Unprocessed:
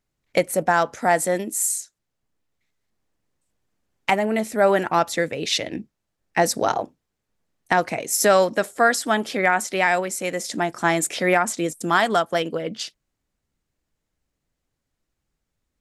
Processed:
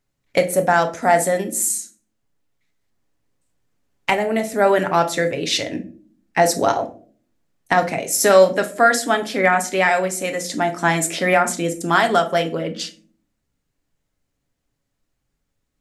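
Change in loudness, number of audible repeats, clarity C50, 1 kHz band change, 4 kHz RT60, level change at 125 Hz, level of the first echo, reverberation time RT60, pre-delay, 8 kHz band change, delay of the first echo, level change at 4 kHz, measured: +3.0 dB, no echo audible, 14.5 dB, +3.0 dB, 0.25 s, +4.0 dB, no echo audible, 0.45 s, 7 ms, +2.5 dB, no echo audible, +2.5 dB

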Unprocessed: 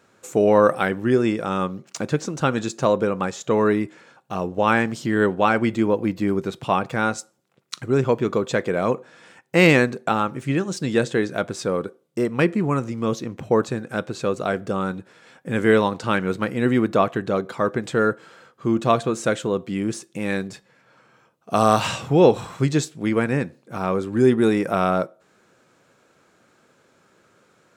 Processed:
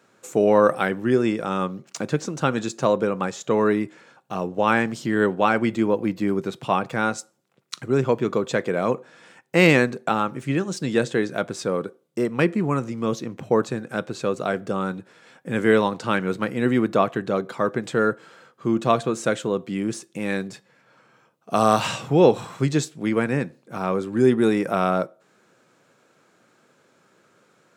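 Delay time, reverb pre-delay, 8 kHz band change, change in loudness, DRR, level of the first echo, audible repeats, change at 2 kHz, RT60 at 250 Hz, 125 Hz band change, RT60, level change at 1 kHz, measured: no echo audible, no reverb audible, −1.0 dB, −1.0 dB, no reverb audible, no echo audible, no echo audible, −1.0 dB, no reverb audible, −2.0 dB, no reverb audible, −1.0 dB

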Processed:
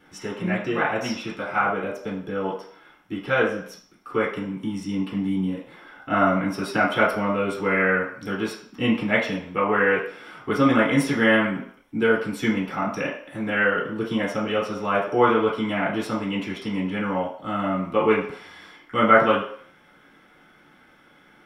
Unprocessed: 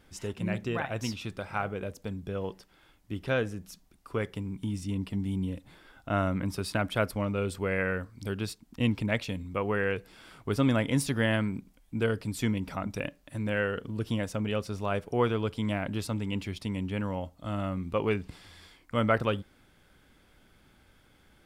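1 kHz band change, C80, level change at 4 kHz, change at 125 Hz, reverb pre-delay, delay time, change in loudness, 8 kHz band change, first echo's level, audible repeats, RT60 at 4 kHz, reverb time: +12.0 dB, 9.0 dB, +6.0 dB, −1.0 dB, 3 ms, no echo audible, +8.0 dB, 0.0 dB, no echo audible, no echo audible, 0.55 s, 0.60 s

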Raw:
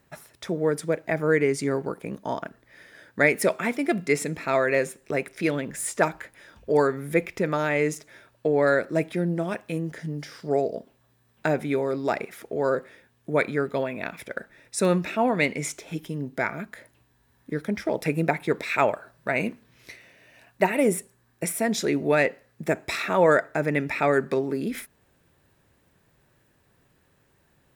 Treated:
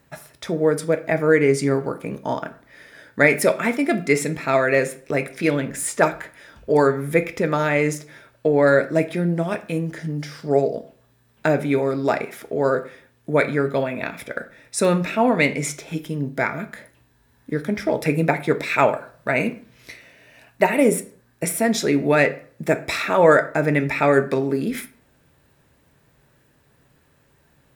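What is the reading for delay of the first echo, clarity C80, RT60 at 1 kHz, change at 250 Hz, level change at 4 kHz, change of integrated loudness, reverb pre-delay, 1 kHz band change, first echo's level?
no echo audible, 20.5 dB, 0.50 s, +5.0 dB, +4.5 dB, +5.0 dB, 3 ms, +4.5 dB, no echo audible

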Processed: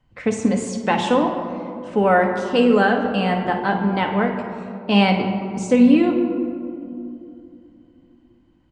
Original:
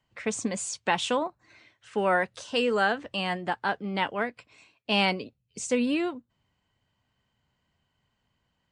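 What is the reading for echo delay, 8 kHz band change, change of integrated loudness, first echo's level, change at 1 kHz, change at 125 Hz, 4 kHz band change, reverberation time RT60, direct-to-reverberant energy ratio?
54 ms, can't be measured, +9.0 dB, −12.5 dB, +8.5 dB, +14.0 dB, +2.5 dB, 2.7 s, 2.5 dB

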